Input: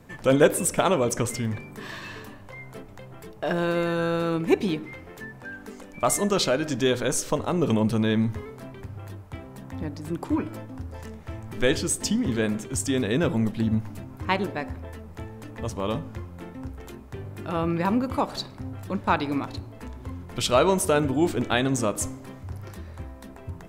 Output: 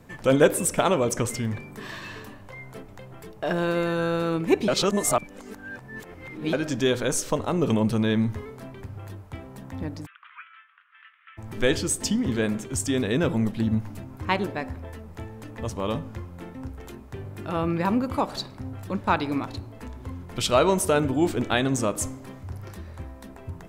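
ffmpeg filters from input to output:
-filter_complex "[0:a]asplit=3[a][b][c];[a]afade=t=out:st=10.05:d=0.02[d];[b]asuperpass=centerf=2000:order=12:qfactor=0.96,afade=t=in:st=10.05:d=0.02,afade=t=out:st=11.37:d=0.02[e];[c]afade=t=in:st=11.37:d=0.02[f];[d][e][f]amix=inputs=3:normalize=0,asplit=3[g][h][i];[g]atrim=end=4.682[j];[h]atrim=start=4.678:end=6.532,asetpts=PTS-STARTPTS,areverse[k];[i]atrim=start=6.528[l];[j][k]acrossfade=d=0.004:c1=hsin:c2=hsin[m];[m][l]acrossfade=d=0.004:c1=hsin:c2=hsin"

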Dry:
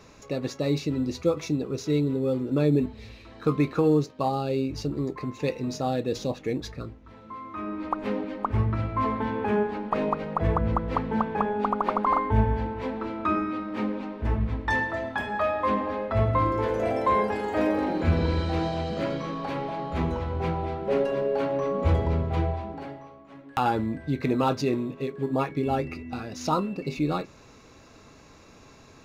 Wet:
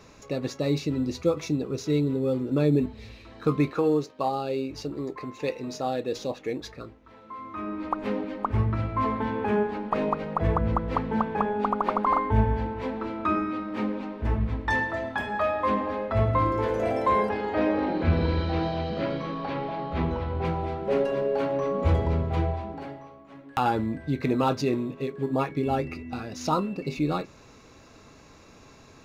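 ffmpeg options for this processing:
-filter_complex "[0:a]asettb=1/sr,asplit=3[a][b][c];[a]atrim=end=3.704[d];[b]atrim=start=3.7:end=7.39,asetpts=PTS-STARTPTS,afade=t=in:d=0.004:c=qsin,afade=t=out:st=3.686:d=0.004:c=qsin,bass=f=250:g=-9,treble=f=4k:g=-2[e];[c]atrim=start=7.386[f];[d][e]acrossfade=d=0.004:c1=hsin:c2=qsin[g];[g][f]acrossfade=d=0.004:c1=qsin:c2=hsin,asettb=1/sr,asplit=3[h][i][j];[h]atrim=end=17.294[k];[i]atrim=start=17.29:end=20.45,asetpts=PTS-STARTPTS,afade=t=in:d=0.004:c=qsin,afade=t=out:st=3.156:d=0.004:c=qsin,lowpass=f=4.9k:w=0.5412,lowpass=f=4.9k:w=1.3066[l];[j]atrim=start=20.446[m];[k][l]acrossfade=d=0.004:c1=hsin:c2=qsin[n];[n][m]acrossfade=d=0.004:c1=qsin:c2=hsin"

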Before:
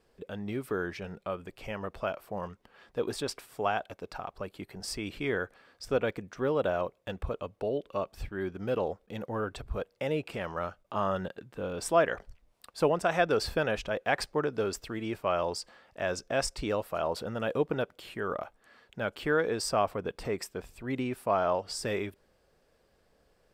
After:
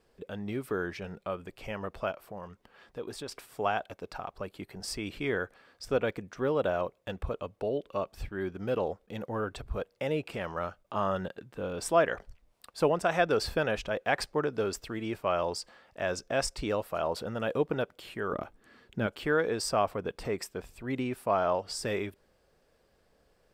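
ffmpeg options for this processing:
-filter_complex "[0:a]asettb=1/sr,asplit=3[a][b][c];[a]atrim=end=2.114[d];[b]atrim=start=2.11:end=3.32,asetpts=PTS-STARTPTS,afade=t=in:d=0.004:c=qsin,afade=t=out:st=1.206:d=0.004:c=qsin,acompressor=threshold=-47dB:ratio=1.5:attack=3.2:release=140:knee=1:detection=peak[e];[c]atrim=start=3.316[f];[d][e]acrossfade=d=0.004:c1=hsin:c2=qsin[g];[g][f]acrossfade=d=0.004:c1=qsin:c2=hsin,asettb=1/sr,asplit=3[h][i][j];[h]atrim=end=18.324[k];[i]atrim=start=18.32:end=19.07,asetpts=PTS-STARTPTS,afade=t=in:d=0.004:c=qsin,afade=t=out:st=0.746:d=0.004:c=qsin,lowshelf=f=450:t=q:w=1.5:g=7[l];[j]atrim=start=19.066[m];[k][l]acrossfade=d=0.004:c1=hsin:c2=qsin[n];[n][m]acrossfade=d=0.004:c1=qsin:c2=hsin"

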